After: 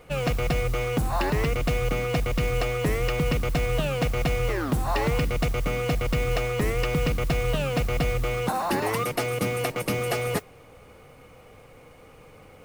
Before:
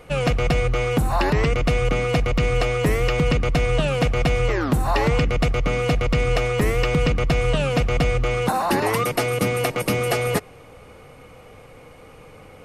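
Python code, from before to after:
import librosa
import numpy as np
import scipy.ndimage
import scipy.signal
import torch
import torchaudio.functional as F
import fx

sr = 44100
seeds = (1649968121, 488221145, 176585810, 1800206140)

y = fx.mod_noise(x, sr, seeds[0], snr_db=22)
y = y * librosa.db_to_amplitude(-5.0)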